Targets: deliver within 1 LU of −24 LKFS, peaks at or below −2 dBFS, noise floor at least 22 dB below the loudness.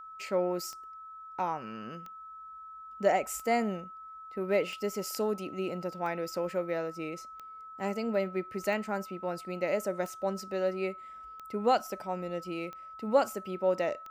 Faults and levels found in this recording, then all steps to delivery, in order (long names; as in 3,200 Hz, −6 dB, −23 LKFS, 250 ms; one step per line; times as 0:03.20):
number of clicks 11; interfering tone 1,300 Hz; level of the tone −44 dBFS; integrated loudness −33.0 LKFS; sample peak −12.0 dBFS; target loudness −24.0 LKFS
→ click removal
notch filter 1,300 Hz, Q 30
level +9 dB